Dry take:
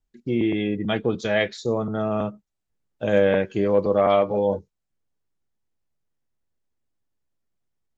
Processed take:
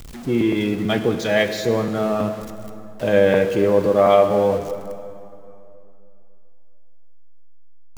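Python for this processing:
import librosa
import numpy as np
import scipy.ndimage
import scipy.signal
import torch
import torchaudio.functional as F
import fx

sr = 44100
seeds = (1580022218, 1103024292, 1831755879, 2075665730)

y = x + 0.5 * 10.0 ** (-34.0 / 20.0) * np.sign(x)
y = fx.rev_plate(y, sr, seeds[0], rt60_s=2.8, hf_ratio=0.7, predelay_ms=0, drr_db=8.0)
y = F.gain(torch.from_numpy(y), 2.5).numpy()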